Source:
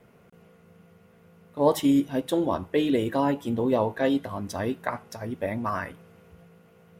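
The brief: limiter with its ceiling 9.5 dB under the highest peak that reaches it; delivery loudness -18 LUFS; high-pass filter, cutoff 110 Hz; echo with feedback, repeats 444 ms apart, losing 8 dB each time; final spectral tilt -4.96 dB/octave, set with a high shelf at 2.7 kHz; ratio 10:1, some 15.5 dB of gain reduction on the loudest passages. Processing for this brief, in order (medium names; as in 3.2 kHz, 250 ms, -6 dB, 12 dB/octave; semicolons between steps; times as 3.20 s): high-pass 110 Hz; treble shelf 2.7 kHz +6 dB; compression 10:1, threshold -30 dBFS; peak limiter -25.5 dBFS; feedback delay 444 ms, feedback 40%, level -8 dB; trim +19 dB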